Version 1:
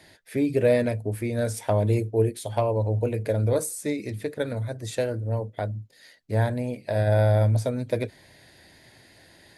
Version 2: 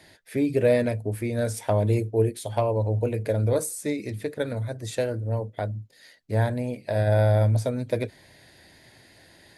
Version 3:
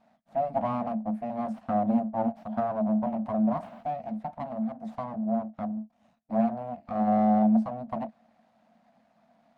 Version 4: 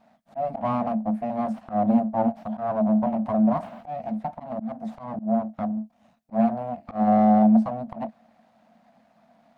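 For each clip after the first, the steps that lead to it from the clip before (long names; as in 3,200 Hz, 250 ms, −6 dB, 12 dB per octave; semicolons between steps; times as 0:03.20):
no processing that can be heard
full-wave rectification; pair of resonant band-passes 390 Hz, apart 1.6 octaves; level +8.5 dB
volume swells 119 ms; level +5 dB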